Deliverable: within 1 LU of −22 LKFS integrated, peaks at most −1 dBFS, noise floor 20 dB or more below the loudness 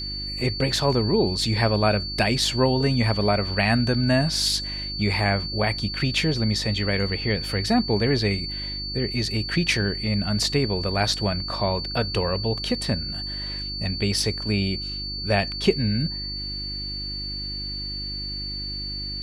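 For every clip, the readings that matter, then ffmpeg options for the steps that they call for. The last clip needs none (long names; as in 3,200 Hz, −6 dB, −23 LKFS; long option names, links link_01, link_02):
mains hum 50 Hz; hum harmonics up to 350 Hz; level of the hum −33 dBFS; interfering tone 4,500 Hz; level of the tone −30 dBFS; integrated loudness −24.0 LKFS; sample peak −6.0 dBFS; target loudness −22.0 LKFS
→ -af "bandreject=frequency=50:width_type=h:width=4,bandreject=frequency=100:width_type=h:width=4,bandreject=frequency=150:width_type=h:width=4,bandreject=frequency=200:width_type=h:width=4,bandreject=frequency=250:width_type=h:width=4,bandreject=frequency=300:width_type=h:width=4,bandreject=frequency=350:width_type=h:width=4"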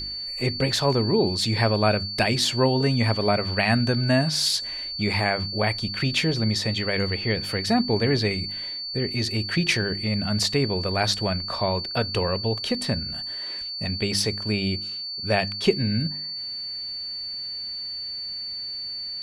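mains hum none found; interfering tone 4,500 Hz; level of the tone −30 dBFS
→ -af "bandreject=frequency=4500:width=30"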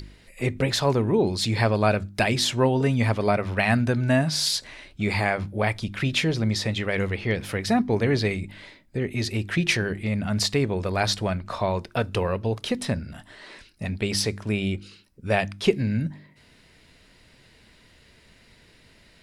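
interfering tone none found; integrated loudness −24.5 LKFS; sample peak −7.0 dBFS; target loudness −22.0 LKFS
→ -af "volume=2.5dB"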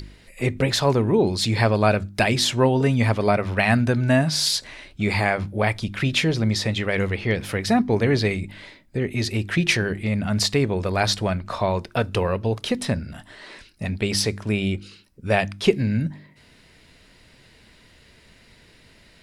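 integrated loudness −22.0 LKFS; sample peak −4.5 dBFS; background noise floor −54 dBFS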